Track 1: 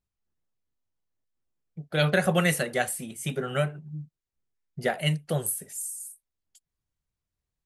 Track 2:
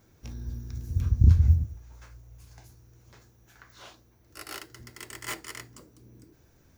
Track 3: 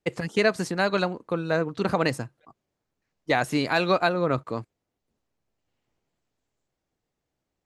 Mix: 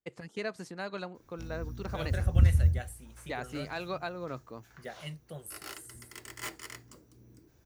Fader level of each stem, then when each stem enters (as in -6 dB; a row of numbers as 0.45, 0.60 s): -16.5, -4.0, -14.5 dB; 0.00, 1.15, 0.00 s